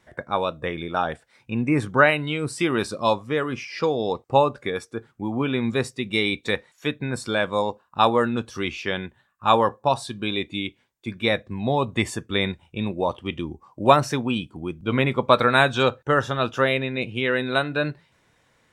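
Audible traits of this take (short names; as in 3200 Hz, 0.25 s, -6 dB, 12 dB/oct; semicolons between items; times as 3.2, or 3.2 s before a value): noise floor -65 dBFS; spectral tilt -3.5 dB/oct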